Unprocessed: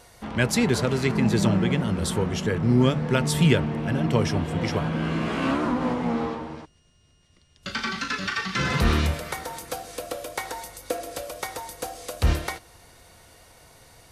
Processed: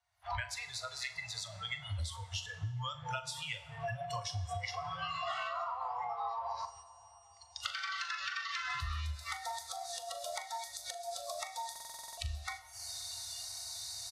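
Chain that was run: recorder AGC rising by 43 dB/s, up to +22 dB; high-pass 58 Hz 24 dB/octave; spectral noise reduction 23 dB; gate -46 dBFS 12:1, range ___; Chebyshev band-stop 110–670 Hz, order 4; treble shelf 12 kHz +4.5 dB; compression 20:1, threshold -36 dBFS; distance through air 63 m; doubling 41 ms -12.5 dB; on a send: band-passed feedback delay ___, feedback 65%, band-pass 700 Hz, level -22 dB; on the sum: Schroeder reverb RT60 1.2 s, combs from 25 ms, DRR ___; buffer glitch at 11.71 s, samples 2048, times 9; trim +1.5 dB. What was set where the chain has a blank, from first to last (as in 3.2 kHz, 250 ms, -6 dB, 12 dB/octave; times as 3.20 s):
-9 dB, 526 ms, 12.5 dB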